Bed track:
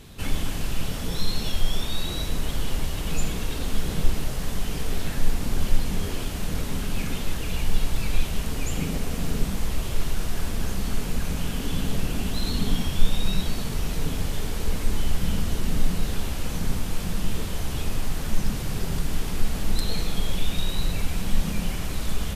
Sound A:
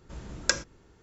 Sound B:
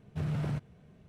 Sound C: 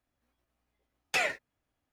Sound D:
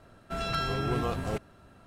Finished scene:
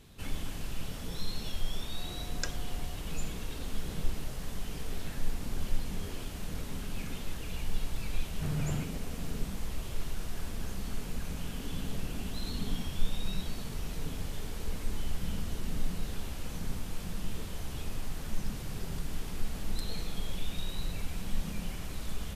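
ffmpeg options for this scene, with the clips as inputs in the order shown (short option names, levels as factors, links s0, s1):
-filter_complex "[0:a]volume=0.316[s0];[1:a]aeval=exprs='val(0)+0.01*sin(2*PI*720*n/s)':c=same,atrim=end=1.02,asetpts=PTS-STARTPTS,volume=0.237,afade=t=in:d=0.004:c=hsin,afade=t=out:st=1.016:d=0.004:c=hsin,adelay=1940[s1];[2:a]atrim=end=1.08,asetpts=PTS-STARTPTS,volume=0.841,afade=t=in:d=0.004:c=hsin,afade=t=out:st=1.076:d=0.004:c=hsin,adelay=8250[s2];[s0][s1][s2]amix=inputs=3:normalize=0"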